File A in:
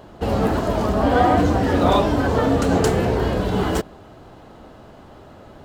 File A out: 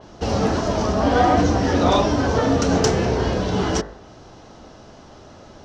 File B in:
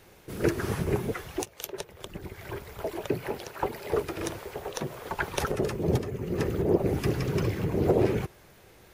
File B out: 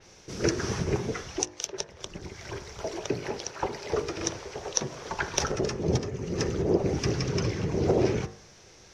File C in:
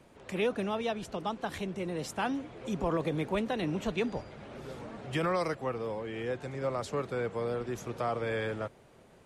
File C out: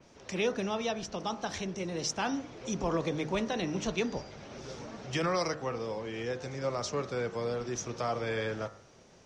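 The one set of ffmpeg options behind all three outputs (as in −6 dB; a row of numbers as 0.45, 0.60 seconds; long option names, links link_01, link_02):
-af "lowpass=frequency=5800:width_type=q:width=6,bandreject=frequency=51.21:width_type=h:width=4,bandreject=frequency=102.42:width_type=h:width=4,bandreject=frequency=153.63:width_type=h:width=4,bandreject=frequency=204.84:width_type=h:width=4,bandreject=frequency=256.05:width_type=h:width=4,bandreject=frequency=307.26:width_type=h:width=4,bandreject=frequency=358.47:width_type=h:width=4,bandreject=frequency=409.68:width_type=h:width=4,bandreject=frequency=460.89:width_type=h:width=4,bandreject=frequency=512.1:width_type=h:width=4,bandreject=frequency=563.31:width_type=h:width=4,bandreject=frequency=614.52:width_type=h:width=4,bandreject=frequency=665.73:width_type=h:width=4,bandreject=frequency=716.94:width_type=h:width=4,bandreject=frequency=768.15:width_type=h:width=4,bandreject=frequency=819.36:width_type=h:width=4,bandreject=frequency=870.57:width_type=h:width=4,bandreject=frequency=921.78:width_type=h:width=4,bandreject=frequency=972.99:width_type=h:width=4,bandreject=frequency=1024.2:width_type=h:width=4,bandreject=frequency=1075.41:width_type=h:width=4,bandreject=frequency=1126.62:width_type=h:width=4,bandreject=frequency=1177.83:width_type=h:width=4,bandreject=frequency=1229.04:width_type=h:width=4,bandreject=frequency=1280.25:width_type=h:width=4,bandreject=frequency=1331.46:width_type=h:width=4,bandreject=frequency=1382.67:width_type=h:width=4,bandreject=frequency=1433.88:width_type=h:width=4,bandreject=frequency=1485.09:width_type=h:width=4,bandreject=frequency=1536.3:width_type=h:width=4,bandreject=frequency=1587.51:width_type=h:width=4,bandreject=frequency=1638.72:width_type=h:width=4,bandreject=frequency=1689.93:width_type=h:width=4,bandreject=frequency=1741.14:width_type=h:width=4,bandreject=frequency=1792.35:width_type=h:width=4,bandreject=frequency=1843.56:width_type=h:width=4,bandreject=frequency=1894.77:width_type=h:width=4,bandreject=frequency=1945.98:width_type=h:width=4,bandreject=frequency=1997.19:width_type=h:width=4,asoftclip=type=hard:threshold=-5.5dB,adynamicequalizer=threshold=0.00631:dfrequency=4200:dqfactor=0.7:tfrequency=4200:tqfactor=0.7:attack=5:release=100:ratio=0.375:range=2.5:mode=cutabove:tftype=highshelf"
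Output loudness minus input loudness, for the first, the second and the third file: −0.5, 0.0, 0.0 LU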